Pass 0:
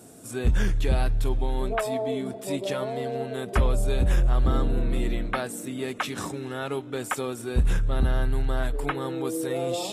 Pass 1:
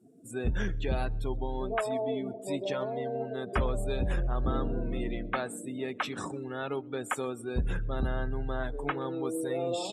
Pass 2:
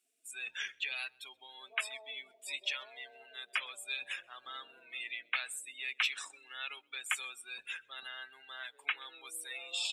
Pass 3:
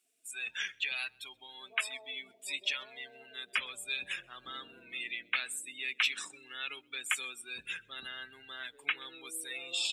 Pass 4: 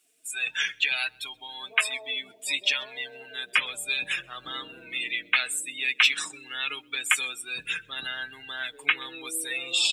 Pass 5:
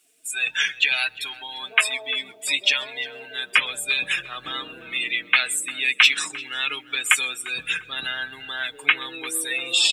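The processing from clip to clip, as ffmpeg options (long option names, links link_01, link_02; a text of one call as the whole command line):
ffmpeg -i in.wav -filter_complex "[0:a]afftdn=noise_reduction=26:noise_floor=-40,lowshelf=frequency=100:gain=-7.5,asplit=2[link_01][link_02];[link_02]adelay=128.3,volume=-28dB,highshelf=frequency=4000:gain=-2.89[link_03];[link_01][link_03]amix=inputs=2:normalize=0,volume=-3dB" out.wav
ffmpeg -i in.wav -af "highpass=frequency=2500:width_type=q:width=2.9,volume=1dB" out.wav
ffmpeg -i in.wav -af "asubboost=boost=9:cutoff=250,volume=3dB" out.wav
ffmpeg -i in.wav -af "aecho=1:1:6.5:0.46,volume=8.5dB" out.wav
ffmpeg -i in.wav -filter_complex "[0:a]asplit=2[link_01][link_02];[link_02]adelay=348,lowpass=frequency=2100:poles=1,volume=-16dB,asplit=2[link_03][link_04];[link_04]adelay=348,lowpass=frequency=2100:poles=1,volume=0.4,asplit=2[link_05][link_06];[link_06]adelay=348,lowpass=frequency=2100:poles=1,volume=0.4,asplit=2[link_07][link_08];[link_08]adelay=348,lowpass=frequency=2100:poles=1,volume=0.4[link_09];[link_01][link_03][link_05][link_07][link_09]amix=inputs=5:normalize=0,volume=5dB" out.wav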